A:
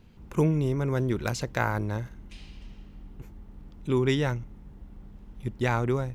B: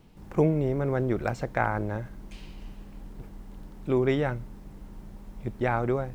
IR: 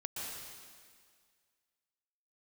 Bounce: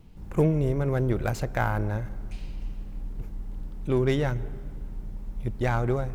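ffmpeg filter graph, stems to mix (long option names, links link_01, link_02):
-filter_complex "[0:a]highpass=330,aemphasis=mode=production:type=cd,aeval=exprs='(tanh(20*val(0)+0.7)-tanh(0.7))/20':channel_layout=same,volume=-5.5dB[link_01];[1:a]lowshelf=frequency=160:gain=12,volume=-4dB,asplit=2[link_02][link_03];[link_03]volume=-16dB[link_04];[2:a]atrim=start_sample=2205[link_05];[link_04][link_05]afir=irnorm=-1:irlink=0[link_06];[link_01][link_02][link_06]amix=inputs=3:normalize=0"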